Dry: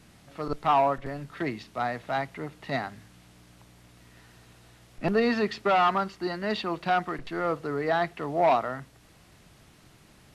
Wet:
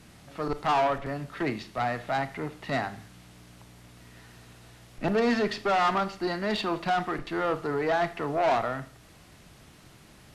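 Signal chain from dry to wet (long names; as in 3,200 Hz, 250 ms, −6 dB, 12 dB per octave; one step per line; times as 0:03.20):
tube saturation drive 24 dB, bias 0.3
four-comb reverb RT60 0.47 s, combs from 26 ms, DRR 13 dB
level +3.5 dB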